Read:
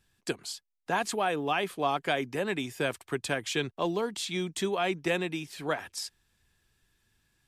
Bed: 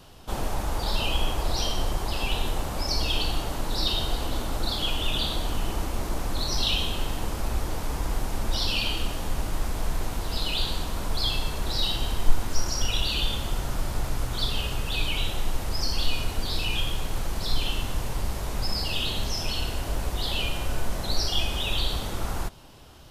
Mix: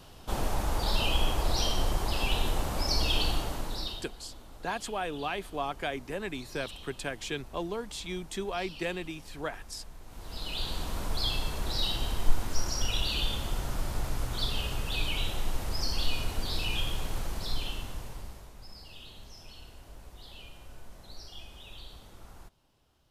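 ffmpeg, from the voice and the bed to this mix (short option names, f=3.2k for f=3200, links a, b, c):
-filter_complex "[0:a]adelay=3750,volume=-5dB[a];[1:a]volume=15dB,afade=t=out:st=3.28:d=0.8:silence=0.112202,afade=t=in:st=10.05:d=0.86:silence=0.149624,afade=t=out:st=17.08:d=1.45:silence=0.149624[b];[a][b]amix=inputs=2:normalize=0"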